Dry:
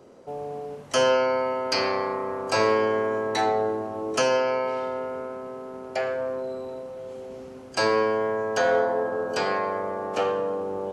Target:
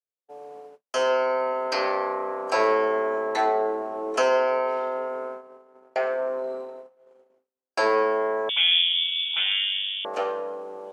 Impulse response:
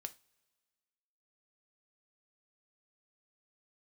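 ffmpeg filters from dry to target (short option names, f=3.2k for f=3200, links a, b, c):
-filter_complex "[0:a]agate=range=-51dB:threshold=-34dB:ratio=16:detection=peak,highpass=400,acrossover=split=2200[a][b];[a]dynaudnorm=f=240:g=9:m=9dB[c];[c][b]amix=inputs=2:normalize=0,asettb=1/sr,asplit=3[d][e][f];[d]atrim=end=8.494[g];[e]atrim=start=8.49:end=10.05,asetpts=PTS-STARTPTS,afade=t=in:d=0.004:c=qsin,afade=t=out:st=1.556:d=0.004:c=qsin,lowpass=f=3.3k:t=q:w=0.5098,lowpass=f=3.3k:t=q:w=0.6013,lowpass=f=3.3k:t=q:w=0.9,lowpass=f=3.3k:t=q:w=2.563,afreqshift=-3900[h];[f]atrim=start=10.046[i];[g][h]acrossfade=d=0.004:c1=hsin:c2=qsin[j];[j][i]acrossfade=d=0.004:c1=qsin:c2=hsin,volume=-6dB"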